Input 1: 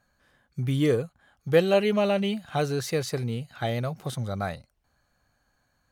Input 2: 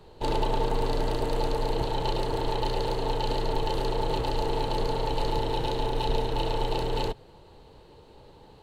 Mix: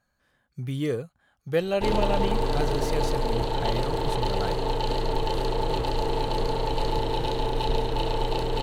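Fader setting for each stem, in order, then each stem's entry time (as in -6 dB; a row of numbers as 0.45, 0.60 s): -4.5, +1.5 dB; 0.00, 1.60 s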